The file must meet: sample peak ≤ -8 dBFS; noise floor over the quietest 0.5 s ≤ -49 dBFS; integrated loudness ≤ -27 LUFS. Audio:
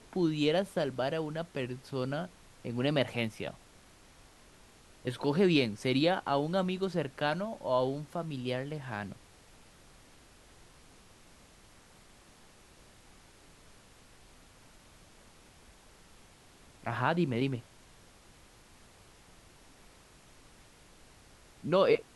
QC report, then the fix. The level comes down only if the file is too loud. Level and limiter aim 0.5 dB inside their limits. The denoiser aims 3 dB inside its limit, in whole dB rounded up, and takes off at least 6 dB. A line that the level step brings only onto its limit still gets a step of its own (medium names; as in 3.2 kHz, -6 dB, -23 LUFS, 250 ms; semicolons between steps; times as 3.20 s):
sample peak -12.0 dBFS: pass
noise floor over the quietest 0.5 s -58 dBFS: pass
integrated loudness -32.0 LUFS: pass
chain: none needed